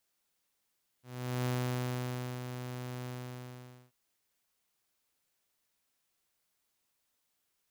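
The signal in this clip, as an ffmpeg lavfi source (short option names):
-f lavfi -i "aevalsrc='0.0422*(2*mod(125*t,1)-1)':d=2.885:s=44100,afade=t=in:d=0.421,afade=t=out:st=0.421:d=0.952:silence=0.376,afade=t=out:st=2.03:d=0.855"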